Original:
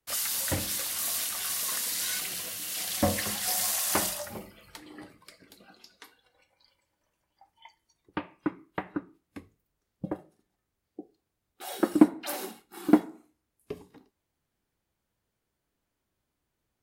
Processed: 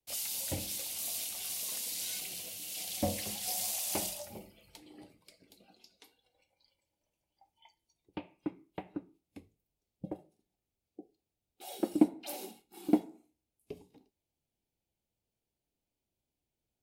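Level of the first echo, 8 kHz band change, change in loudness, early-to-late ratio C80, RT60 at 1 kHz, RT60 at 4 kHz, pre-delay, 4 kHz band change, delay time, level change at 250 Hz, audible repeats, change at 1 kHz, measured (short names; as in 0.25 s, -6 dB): none, -6.5 dB, -6.5 dB, none, none, none, none, -6.5 dB, none, -6.5 dB, none, -9.0 dB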